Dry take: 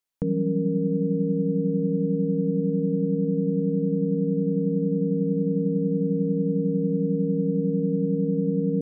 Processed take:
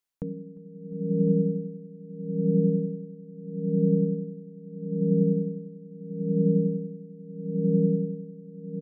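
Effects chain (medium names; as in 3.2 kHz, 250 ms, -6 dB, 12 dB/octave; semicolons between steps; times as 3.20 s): feedback delay 352 ms, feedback 51%, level -10 dB; logarithmic tremolo 0.77 Hz, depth 23 dB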